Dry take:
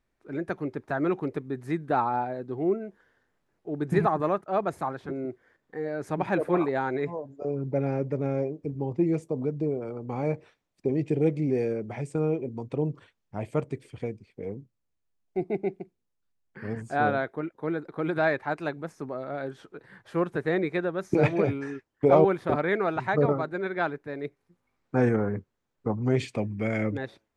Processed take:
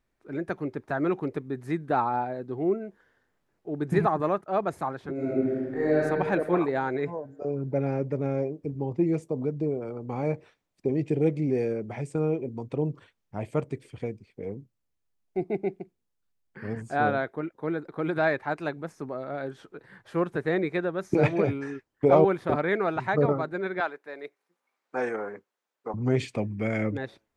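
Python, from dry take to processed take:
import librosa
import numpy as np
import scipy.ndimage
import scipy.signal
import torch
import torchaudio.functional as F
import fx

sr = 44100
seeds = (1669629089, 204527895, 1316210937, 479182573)

y = fx.reverb_throw(x, sr, start_s=5.14, length_s=0.85, rt60_s=2.2, drr_db=-10.5)
y = fx.highpass(y, sr, hz=530.0, slope=12, at=(23.8, 25.94))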